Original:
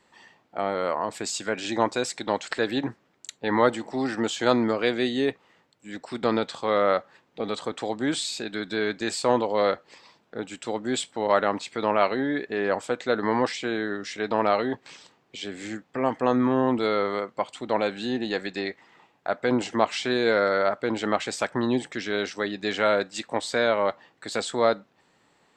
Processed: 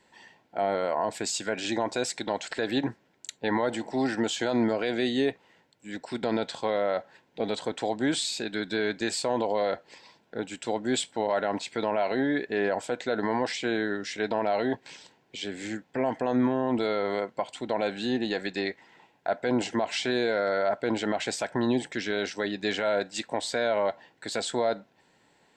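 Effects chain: dynamic EQ 680 Hz, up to +6 dB, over -40 dBFS, Q 5; limiter -16 dBFS, peak gain reduction 11.5 dB; Butterworth band-stop 1200 Hz, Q 5.5

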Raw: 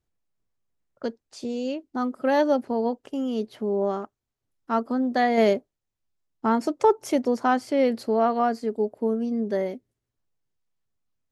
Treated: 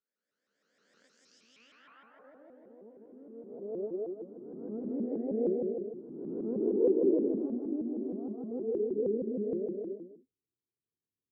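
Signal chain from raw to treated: spectral swells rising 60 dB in 1.71 s; EQ curve 100 Hz 0 dB, 830 Hz -20 dB, 2000 Hz -6 dB, 4500 Hz -28 dB; band-pass sweep 6000 Hz -> 360 Hz, 2.12–4.08; 7.27–8.51 fixed phaser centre 490 Hz, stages 6; low-pass sweep 7800 Hz -> 430 Hz, 1.18–2.38; bouncing-ball echo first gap 0.17 s, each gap 0.7×, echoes 5; shaped vibrato saw up 6.4 Hz, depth 250 cents

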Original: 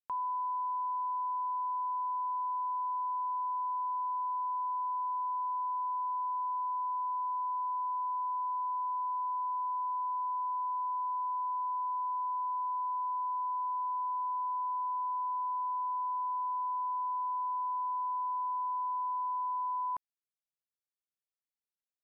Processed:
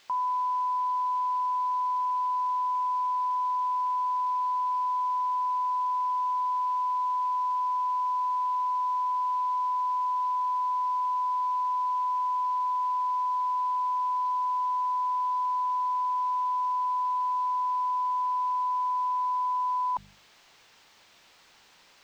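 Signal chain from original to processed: bell 900 Hz +8.5 dB 0.75 oct; notches 50/100/150/200 Hz; reverse; upward compressor, threshold -30 dBFS; reverse; added noise blue -44 dBFS; air absorption 190 m

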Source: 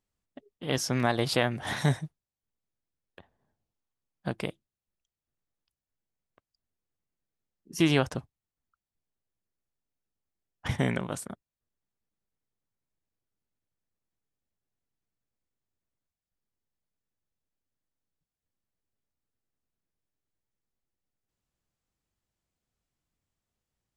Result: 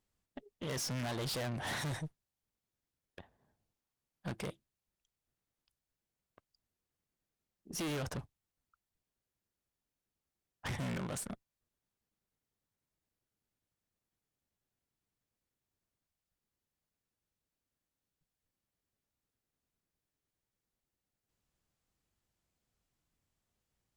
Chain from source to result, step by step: tube stage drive 38 dB, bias 0.35; gain +2.5 dB

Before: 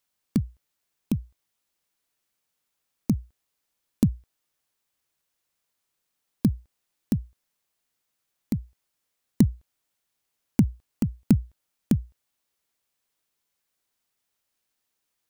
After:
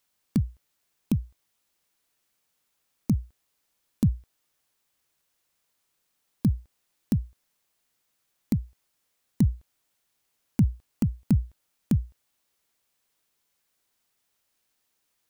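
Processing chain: limiter -17.5 dBFS, peak gain reduction 11 dB; gain +4 dB

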